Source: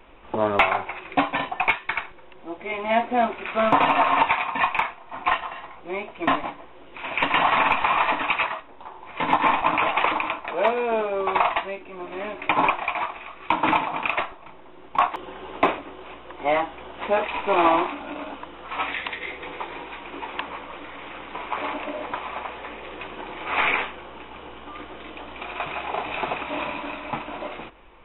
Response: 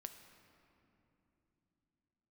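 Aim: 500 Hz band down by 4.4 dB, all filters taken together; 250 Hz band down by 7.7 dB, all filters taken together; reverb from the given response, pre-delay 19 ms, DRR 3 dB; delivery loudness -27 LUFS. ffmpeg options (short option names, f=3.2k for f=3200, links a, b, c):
-filter_complex "[0:a]equalizer=f=250:t=o:g=-8.5,equalizer=f=500:t=o:g=-4.5,asplit=2[a][b];[1:a]atrim=start_sample=2205,adelay=19[c];[b][c]afir=irnorm=-1:irlink=0,volume=2dB[d];[a][d]amix=inputs=2:normalize=0,volume=-3dB"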